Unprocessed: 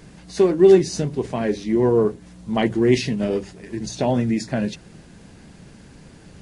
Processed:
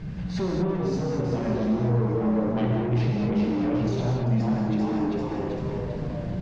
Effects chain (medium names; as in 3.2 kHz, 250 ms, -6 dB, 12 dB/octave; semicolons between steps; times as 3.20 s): resonant low shelf 220 Hz +9 dB, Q 1.5; on a send: frequency-shifting echo 392 ms, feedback 45%, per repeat +94 Hz, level -6.5 dB; on the sum: compression 5:1, threshold -24 dBFS, peak gain reduction 15 dB; saturation -27 dBFS, distortion -11 dB; distance through air 190 m; gated-style reverb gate 260 ms flat, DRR -1 dB; trim +2.5 dB